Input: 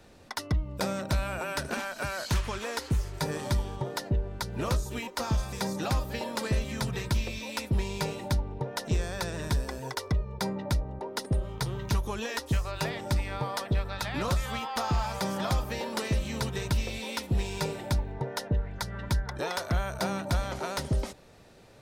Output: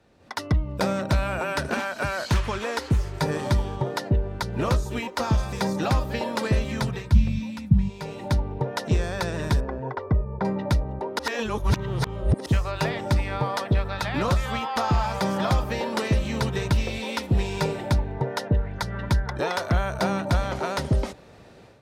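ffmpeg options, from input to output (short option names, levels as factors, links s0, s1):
-filter_complex "[0:a]asplit=3[s0][s1][s2];[s0]afade=t=out:st=7.12:d=0.02[s3];[s1]lowshelf=f=270:t=q:w=3:g=13.5,afade=t=in:st=7.12:d=0.02,afade=t=out:st=7.88:d=0.02[s4];[s2]afade=t=in:st=7.88:d=0.02[s5];[s3][s4][s5]amix=inputs=3:normalize=0,asettb=1/sr,asplit=3[s6][s7][s8];[s6]atrim=end=9.604[s9];[s7]atrim=start=9.6:end=10.45,asetpts=PTS-STARTPTS,afade=t=in:d=0.004:c=qsin,afade=t=out:st=0.846:d=0.004:c=qsin,lowpass=1300[s10];[s8]atrim=start=10.446[s11];[s9][s10]acrossfade=d=0.004:c1=hsin:c2=qsin[s12];[s12][s11]acrossfade=d=0.004:c1=qsin:c2=hsin,asplit=3[s13][s14][s15];[s13]atrim=end=11.192[s16];[s14]atrim=start=11.188:end=12.462,asetpts=PTS-STARTPTS,areverse[s17];[s15]atrim=start=12.458[s18];[s16][s17]acrossfade=d=0.004:c1=hsin:c2=hsin[s19];[s19][s18]acrossfade=d=0.004:c1=hsin:c2=hsin,highpass=48,aemphasis=mode=reproduction:type=cd,dynaudnorm=f=190:g=3:m=4.22,volume=0.501"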